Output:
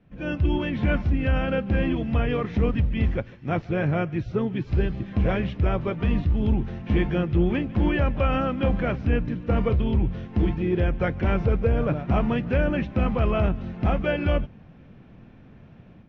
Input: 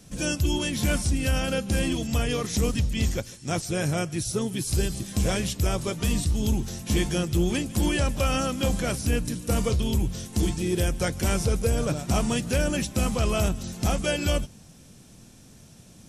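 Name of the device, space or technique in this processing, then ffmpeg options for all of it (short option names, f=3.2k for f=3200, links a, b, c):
action camera in a waterproof case: -af "lowpass=f=2.4k:w=0.5412,lowpass=f=2.4k:w=1.3066,dynaudnorm=f=170:g=3:m=11dB,volume=-8dB" -ar 16000 -c:a aac -b:a 64k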